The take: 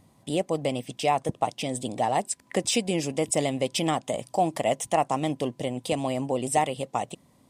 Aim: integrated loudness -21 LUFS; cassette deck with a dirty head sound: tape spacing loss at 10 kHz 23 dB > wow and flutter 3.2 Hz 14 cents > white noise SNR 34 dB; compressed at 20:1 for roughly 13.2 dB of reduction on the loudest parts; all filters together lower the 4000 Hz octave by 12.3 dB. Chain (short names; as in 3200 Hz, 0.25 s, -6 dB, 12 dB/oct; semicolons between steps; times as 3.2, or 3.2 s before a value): bell 4000 Hz -6.5 dB; compressor 20:1, threshold -31 dBFS; tape spacing loss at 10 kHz 23 dB; wow and flutter 3.2 Hz 14 cents; white noise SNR 34 dB; gain +18 dB